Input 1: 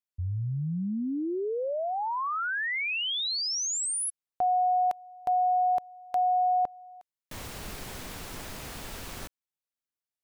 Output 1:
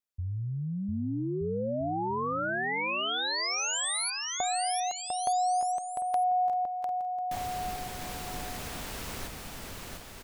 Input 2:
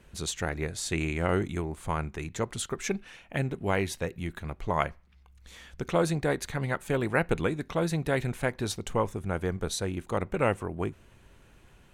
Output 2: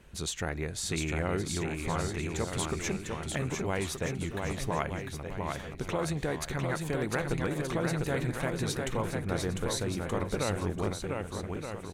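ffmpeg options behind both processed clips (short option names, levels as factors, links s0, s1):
-filter_complex "[0:a]acompressor=threshold=0.0251:ratio=6:attack=22:release=49:knee=6:detection=peak,asplit=2[s0][s1];[s1]aecho=0:1:700|1225|1619|1914|2136:0.631|0.398|0.251|0.158|0.1[s2];[s0][s2]amix=inputs=2:normalize=0"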